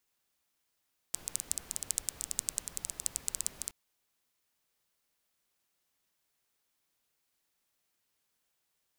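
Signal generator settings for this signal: rain from filtered ticks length 2.57 s, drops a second 12, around 7900 Hz, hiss -14 dB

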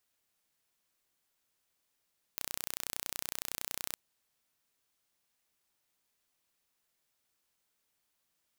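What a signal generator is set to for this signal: pulse train 30.8/s, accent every 0, -9 dBFS 1.56 s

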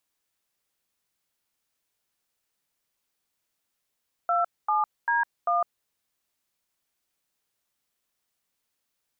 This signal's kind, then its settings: DTMF "27D1", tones 0.156 s, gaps 0.238 s, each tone -23.5 dBFS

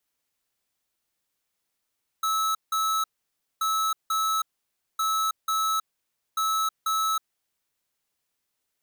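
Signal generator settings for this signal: beep pattern square 1300 Hz, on 0.32 s, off 0.17 s, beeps 2, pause 0.57 s, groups 4, -25 dBFS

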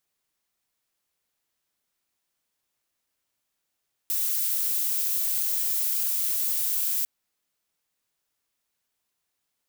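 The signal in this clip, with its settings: noise violet, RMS -26 dBFS 2.95 s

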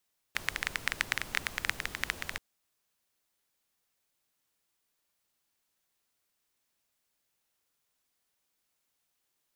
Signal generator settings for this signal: rain from filtered ticks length 2.03 s, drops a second 13, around 1900 Hz, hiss -9.5 dB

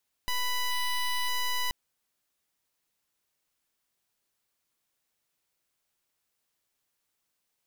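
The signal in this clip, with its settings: pulse 991 Hz, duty 13% -28.5 dBFS 1.43 s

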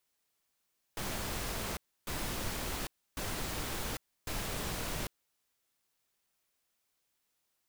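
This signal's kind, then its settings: noise bursts pink, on 0.80 s, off 0.30 s, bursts 4, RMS -37 dBFS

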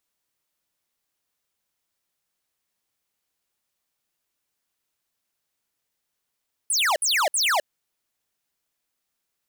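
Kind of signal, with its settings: burst of laser zaps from 11000 Hz, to 550 Hz, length 0.26 s square, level -21 dB, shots 3, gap 0.06 s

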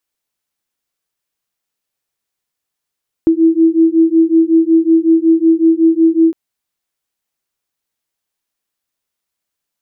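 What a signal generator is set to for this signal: beating tones 324 Hz, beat 5.4 Hz, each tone -10.5 dBFS 3.06 s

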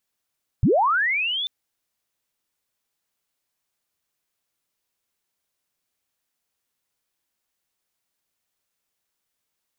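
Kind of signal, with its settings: chirp linear 78 Hz -> 3600 Hz -13.5 dBFS -> -24 dBFS 0.84 s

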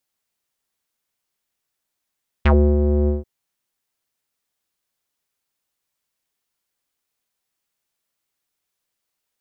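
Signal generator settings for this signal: synth note square D2 12 dB/oct, low-pass 430 Hz, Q 3.5, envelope 3 oct, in 0.09 s, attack 8.9 ms, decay 0.31 s, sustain -5.5 dB, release 0.16 s, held 0.63 s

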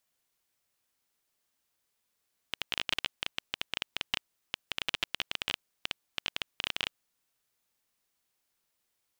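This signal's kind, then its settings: random clicks 15/s -12 dBFS 4.38 s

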